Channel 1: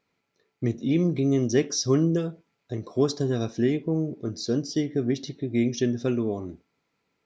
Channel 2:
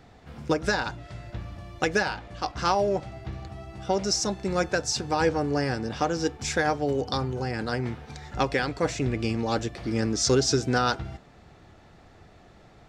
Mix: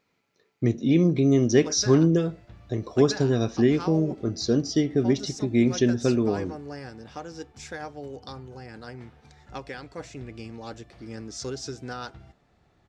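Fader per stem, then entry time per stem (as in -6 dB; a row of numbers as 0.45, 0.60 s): +3.0, -12.0 dB; 0.00, 1.15 s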